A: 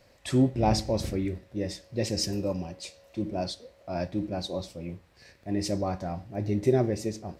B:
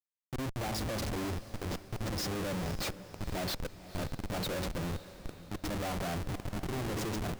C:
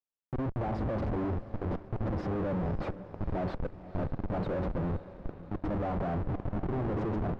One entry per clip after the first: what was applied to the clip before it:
auto swell 0.429 s; Schmitt trigger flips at -42 dBFS; diffused feedback echo 0.503 s, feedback 49%, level -15 dB
in parallel at -4 dB: bit-crush 8-bit; on the sum: LPF 1100 Hz 12 dB/oct

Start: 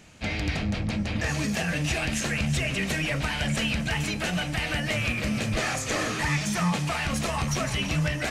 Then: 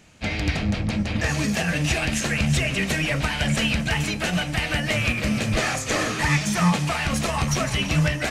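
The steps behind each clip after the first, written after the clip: upward expander 1.5:1, over -37 dBFS; gain +6.5 dB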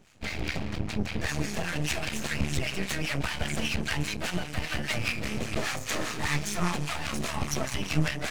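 half-wave rectifier; harmonic tremolo 5 Hz, depth 70%, crossover 960 Hz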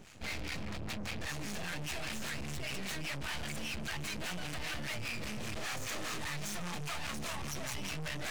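in parallel at -1.5 dB: negative-ratio compressor -35 dBFS, ratio -0.5; on the sum: soft clip -30 dBFS, distortion -7 dB; gain -4 dB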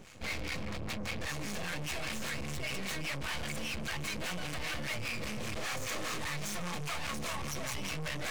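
small resonant body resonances 510/1100/2200 Hz, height 6 dB; gain +1.5 dB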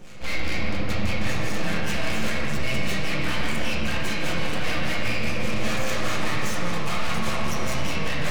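reverb RT60 3.2 s, pre-delay 6 ms, DRR -6 dB; gain +3.5 dB

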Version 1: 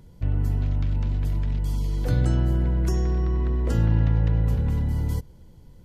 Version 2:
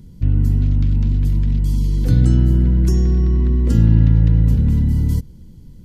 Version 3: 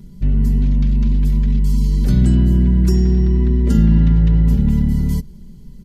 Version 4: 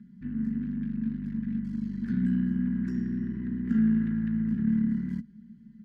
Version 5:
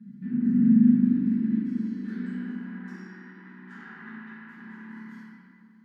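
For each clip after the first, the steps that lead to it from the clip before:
EQ curve 120 Hz 0 dB, 230 Hz +4 dB, 660 Hz -14 dB, 4700 Hz -3 dB; gain +8 dB
comb 5 ms, depth 82%
one-sided clip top -20 dBFS; double band-pass 610 Hz, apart 2.9 oct
high-pass sweep 200 Hz -> 910 Hz, 0.63–3.06; reverb RT60 2.3 s, pre-delay 5 ms, DRR -12.5 dB; gain -8.5 dB

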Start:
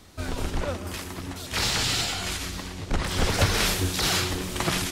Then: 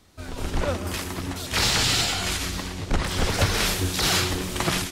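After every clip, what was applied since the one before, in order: AGC gain up to 11.5 dB; gain -6.5 dB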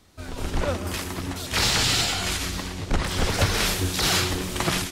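nothing audible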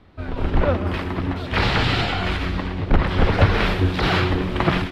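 air absorption 410 m; gain +7.5 dB

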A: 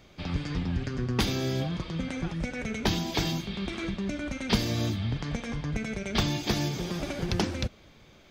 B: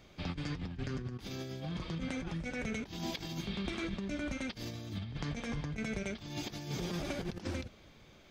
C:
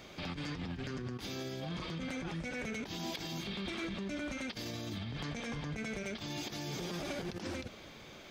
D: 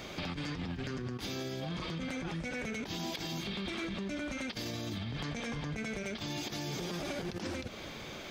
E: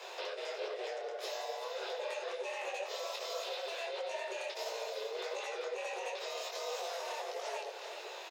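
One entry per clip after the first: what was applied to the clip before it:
negative-ratio compressor -32 dBFS, ratio -0.5; gain -6 dB
low shelf 130 Hz -11.5 dB; hard clip -32 dBFS, distortion -23 dB; limiter -41 dBFS, peak gain reduction 9 dB; gain +9 dB
compressor 3:1, threshold -44 dBFS, peak gain reduction 7 dB; gain +7.5 dB
echo 0.388 s -8 dB; frequency shift +340 Hz; detuned doubles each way 51 cents; gain +1 dB

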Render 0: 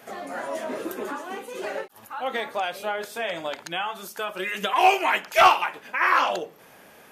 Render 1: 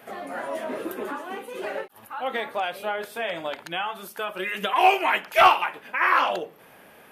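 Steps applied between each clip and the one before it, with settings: EQ curve 3000 Hz 0 dB, 6700 Hz -9 dB, 10000 Hz -1 dB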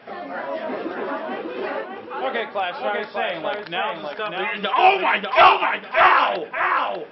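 brick-wall FIR low-pass 5600 Hz; darkening echo 0.595 s, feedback 27%, low-pass 3100 Hz, level -3 dB; gain +3 dB

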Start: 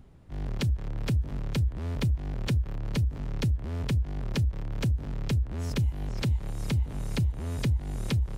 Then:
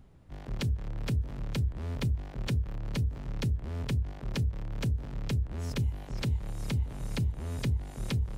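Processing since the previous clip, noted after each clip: notches 50/100/150/200/250/300/350/400/450 Hz; gain -2.5 dB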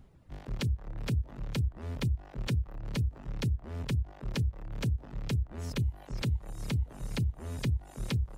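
reverb removal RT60 0.79 s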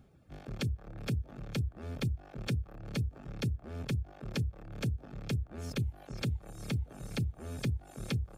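notch comb 970 Hz

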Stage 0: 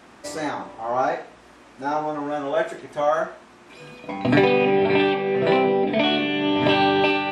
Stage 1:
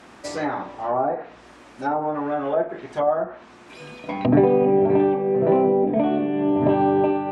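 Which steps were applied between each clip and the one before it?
treble ducked by the level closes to 770 Hz, closed at -19.5 dBFS; gain +2 dB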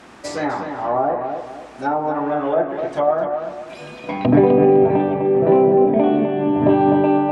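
darkening echo 0.253 s, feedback 34%, low-pass 2900 Hz, level -6.5 dB; gain +3 dB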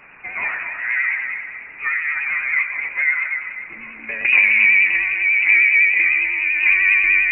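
split-band echo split 670 Hz, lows 0.219 s, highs 0.128 s, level -12.5 dB; inverted band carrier 2700 Hz; vibrato 10 Hz 47 cents; gain -1.5 dB

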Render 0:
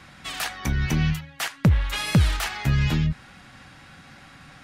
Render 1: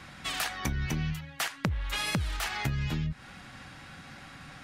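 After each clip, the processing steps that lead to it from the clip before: compressor 16:1, threshold -27 dBFS, peak gain reduction 14 dB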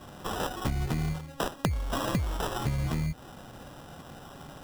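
sample-and-hold 20×; gain +1.5 dB

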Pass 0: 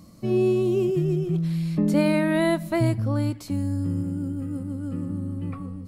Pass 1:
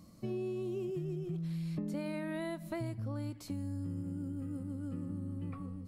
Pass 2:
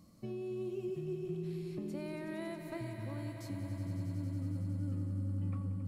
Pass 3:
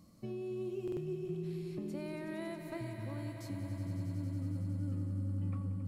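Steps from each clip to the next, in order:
compressor, threshold -27 dBFS, peak gain reduction 11 dB; gain -8 dB
swelling echo 92 ms, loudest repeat 5, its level -12 dB; gain -4 dB
stuck buffer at 0.83, samples 2048, times 2

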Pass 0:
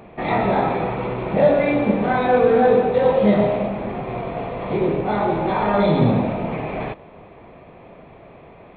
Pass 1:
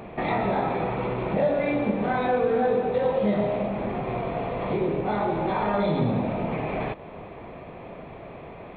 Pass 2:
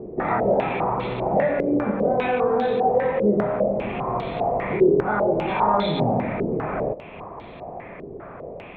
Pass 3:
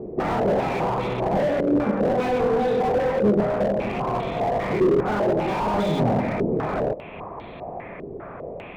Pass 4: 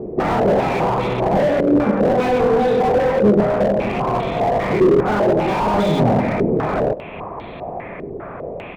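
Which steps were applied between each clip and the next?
compressor 2:1, threshold -32 dBFS, peak gain reduction 12 dB; gain +3 dB
stepped low-pass 5 Hz 400–3800 Hz
slew limiter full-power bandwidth 54 Hz; gain +1.5 dB
speakerphone echo 0.1 s, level -26 dB; gain +5.5 dB

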